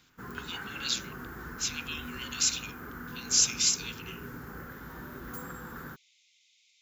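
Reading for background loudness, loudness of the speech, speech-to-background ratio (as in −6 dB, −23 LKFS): −42.5 LKFS, −29.0 LKFS, 13.5 dB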